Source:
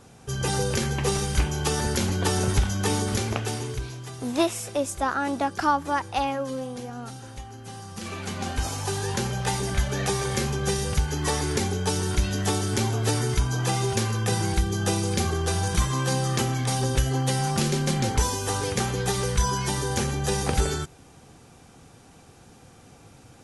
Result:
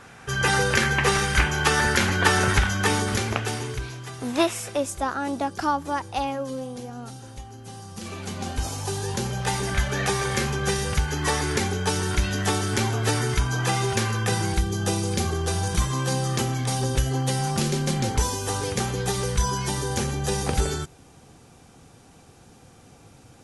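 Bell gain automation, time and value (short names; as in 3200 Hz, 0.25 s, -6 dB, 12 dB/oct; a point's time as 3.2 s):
bell 1700 Hz 1.7 oct
2.51 s +14.5 dB
3.24 s +6 dB
4.68 s +6 dB
5.13 s -3.5 dB
9.2 s -3.5 dB
9.66 s +6 dB
14.21 s +6 dB
14.72 s -1 dB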